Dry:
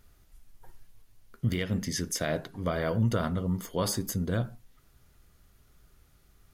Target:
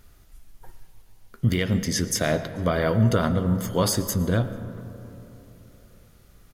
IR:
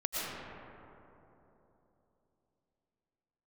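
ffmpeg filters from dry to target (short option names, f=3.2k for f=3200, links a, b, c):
-filter_complex "[0:a]asplit=2[a][b];[b]adelay=437.3,volume=-27dB,highshelf=f=4k:g=-9.84[c];[a][c]amix=inputs=2:normalize=0,asplit=2[d][e];[1:a]atrim=start_sample=2205[f];[e][f]afir=irnorm=-1:irlink=0,volume=-17dB[g];[d][g]amix=inputs=2:normalize=0,volume=5.5dB"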